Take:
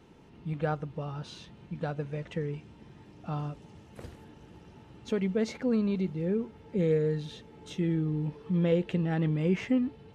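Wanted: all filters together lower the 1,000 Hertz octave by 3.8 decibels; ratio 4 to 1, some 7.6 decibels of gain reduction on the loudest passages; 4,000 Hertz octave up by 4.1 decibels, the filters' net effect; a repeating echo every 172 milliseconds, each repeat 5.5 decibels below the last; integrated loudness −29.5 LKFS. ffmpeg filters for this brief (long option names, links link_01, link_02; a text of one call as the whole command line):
ffmpeg -i in.wav -af "equalizer=frequency=1000:width_type=o:gain=-6,equalizer=frequency=4000:width_type=o:gain=5.5,acompressor=threshold=-31dB:ratio=4,aecho=1:1:172|344|516|688|860|1032|1204:0.531|0.281|0.149|0.079|0.0419|0.0222|0.0118,volume=6dB" out.wav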